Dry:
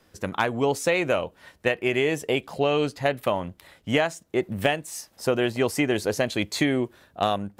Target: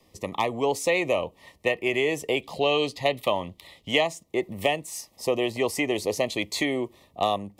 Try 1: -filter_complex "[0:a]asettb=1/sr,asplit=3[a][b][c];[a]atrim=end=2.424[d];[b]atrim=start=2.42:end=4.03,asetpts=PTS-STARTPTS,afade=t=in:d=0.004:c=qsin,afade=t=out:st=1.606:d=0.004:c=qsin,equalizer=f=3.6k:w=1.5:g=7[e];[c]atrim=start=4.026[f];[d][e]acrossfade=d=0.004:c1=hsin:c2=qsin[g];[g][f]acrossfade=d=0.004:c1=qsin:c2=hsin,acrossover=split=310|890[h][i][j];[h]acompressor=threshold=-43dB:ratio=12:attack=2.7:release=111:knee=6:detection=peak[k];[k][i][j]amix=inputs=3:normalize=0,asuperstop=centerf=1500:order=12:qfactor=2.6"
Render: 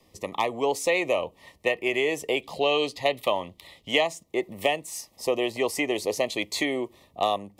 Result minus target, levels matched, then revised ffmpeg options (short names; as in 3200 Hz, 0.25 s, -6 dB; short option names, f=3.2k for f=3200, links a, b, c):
compressor: peak gain reduction +8 dB
-filter_complex "[0:a]asettb=1/sr,asplit=3[a][b][c];[a]atrim=end=2.424[d];[b]atrim=start=2.42:end=4.03,asetpts=PTS-STARTPTS,afade=t=in:d=0.004:c=qsin,afade=t=out:st=1.606:d=0.004:c=qsin,equalizer=f=3.6k:w=1.5:g=7[e];[c]atrim=start=4.026[f];[d][e]acrossfade=d=0.004:c1=hsin:c2=qsin[g];[g][f]acrossfade=d=0.004:c1=qsin:c2=hsin,acrossover=split=310|890[h][i][j];[h]acompressor=threshold=-34.5dB:ratio=12:attack=2.7:release=111:knee=6:detection=peak[k];[k][i][j]amix=inputs=3:normalize=0,asuperstop=centerf=1500:order=12:qfactor=2.6"